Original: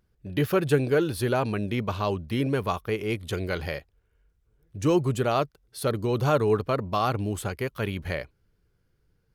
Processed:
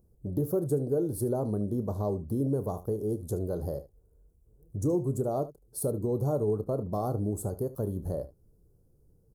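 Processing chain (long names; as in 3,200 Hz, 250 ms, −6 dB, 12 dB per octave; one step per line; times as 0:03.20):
Chebyshev band-stop filter 550–9,300 Hz, order 2
downward compressor 2 to 1, threshold −41 dBFS, peak gain reduction 13.5 dB
on a send: ambience of single reflections 29 ms −14 dB, 74 ms −16 dB
on the sum: level +6.5 dB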